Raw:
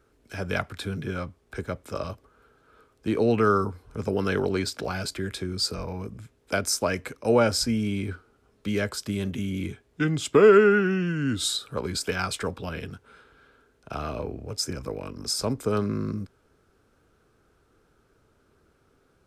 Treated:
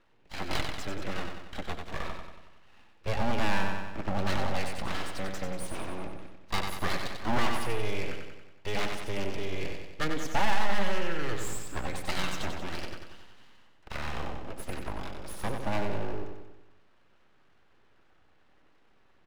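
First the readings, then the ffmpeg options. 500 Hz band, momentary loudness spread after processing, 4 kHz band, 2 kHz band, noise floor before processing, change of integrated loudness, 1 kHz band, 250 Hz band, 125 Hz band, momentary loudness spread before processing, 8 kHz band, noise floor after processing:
-12.0 dB, 12 LU, -6.0 dB, -3.5 dB, -65 dBFS, -8.5 dB, -2.0 dB, -9.5 dB, -7.0 dB, 15 LU, -10.0 dB, -61 dBFS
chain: -filter_complex "[0:a]lowpass=f=2.7k:t=q:w=1.8,aecho=1:1:5.3:0.35,aeval=exprs='abs(val(0))':c=same,asplit=2[a][b];[b]aecho=0:1:93|186|279|372|465|558|651:0.501|0.271|0.146|0.0789|0.0426|0.023|0.0124[c];[a][c]amix=inputs=2:normalize=0,aeval=exprs='(tanh(2.82*val(0)+0.35)-tanh(0.35))/2.82':c=same,volume=-1dB"

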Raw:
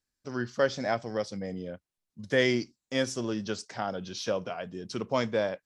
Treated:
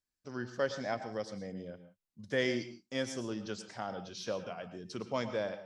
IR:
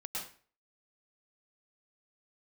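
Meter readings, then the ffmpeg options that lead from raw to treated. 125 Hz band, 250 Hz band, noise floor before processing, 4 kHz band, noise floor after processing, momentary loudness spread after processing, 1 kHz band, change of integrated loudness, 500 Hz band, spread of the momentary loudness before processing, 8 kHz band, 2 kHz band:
-6.5 dB, -6.5 dB, under -85 dBFS, -6.5 dB, under -85 dBFS, 11 LU, -6.5 dB, -6.5 dB, -6.5 dB, 11 LU, -6.5 dB, -6.5 dB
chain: -filter_complex "[0:a]asplit=2[a][b];[1:a]atrim=start_sample=2205,afade=t=out:st=0.24:d=0.01,atrim=end_sample=11025[c];[b][c]afir=irnorm=-1:irlink=0,volume=-8dB[d];[a][d]amix=inputs=2:normalize=0,volume=-8.5dB"

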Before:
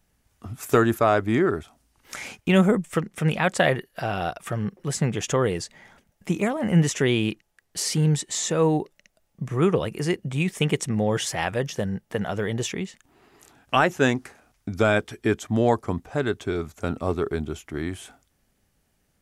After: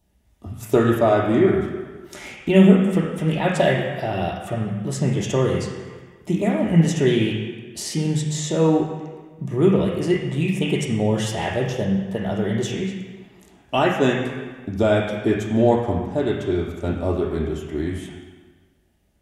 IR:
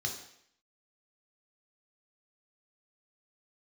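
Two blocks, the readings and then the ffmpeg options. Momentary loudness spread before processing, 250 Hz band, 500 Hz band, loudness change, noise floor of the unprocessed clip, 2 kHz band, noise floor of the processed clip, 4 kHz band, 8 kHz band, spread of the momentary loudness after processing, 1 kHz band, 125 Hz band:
12 LU, +5.0 dB, +4.0 dB, +3.5 dB, -70 dBFS, -1.0 dB, -57 dBFS, +0.5 dB, -3.0 dB, 14 LU, +0.5 dB, +3.5 dB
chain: -filter_complex "[0:a]asplit=2[a][b];[1:a]atrim=start_sample=2205,asetrate=22050,aresample=44100,highshelf=f=5.4k:g=-11.5[c];[b][c]afir=irnorm=-1:irlink=0,volume=-4.5dB[d];[a][d]amix=inputs=2:normalize=0,volume=-2.5dB"

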